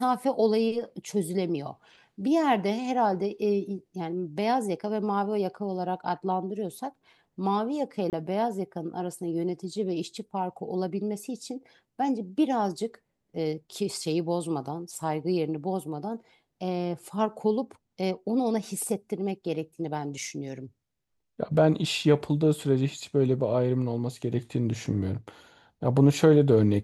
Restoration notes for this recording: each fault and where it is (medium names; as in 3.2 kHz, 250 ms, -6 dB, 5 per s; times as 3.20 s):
8.10–8.13 s: dropout 28 ms